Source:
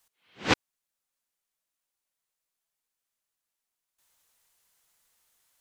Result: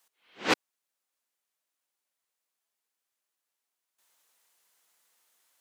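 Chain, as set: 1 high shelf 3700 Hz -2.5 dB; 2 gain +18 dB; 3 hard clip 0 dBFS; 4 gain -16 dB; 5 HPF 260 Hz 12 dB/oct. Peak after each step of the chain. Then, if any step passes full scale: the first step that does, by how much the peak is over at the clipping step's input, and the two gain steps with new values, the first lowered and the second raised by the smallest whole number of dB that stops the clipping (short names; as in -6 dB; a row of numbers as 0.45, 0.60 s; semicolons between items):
-8.5, +9.5, 0.0, -16.0, -10.5 dBFS; step 2, 9.5 dB; step 2 +8 dB, step 4 -6 dB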